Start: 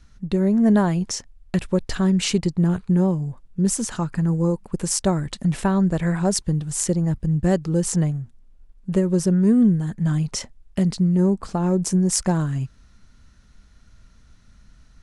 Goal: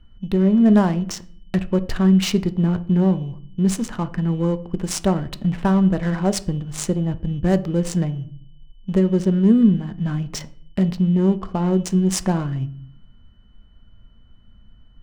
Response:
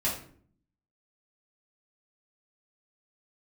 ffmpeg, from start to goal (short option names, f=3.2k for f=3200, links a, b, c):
-filter_complex "[0:a]aeval=exprs='val(0)+0.00398*sin(2*PI*3000*n/s)':c=same,adynamicsmooth=sensitivity=5:basefreq=1k,asplit=2[a][b];[1:a]atrim=start_sample=2205,highshelf=f=5.3k:g=-9.5[c];[b][c]afir=irnorm=-1:irlink=0,volume=-17.5dB[d];[a][d]amix=inputs=2:normalize=0"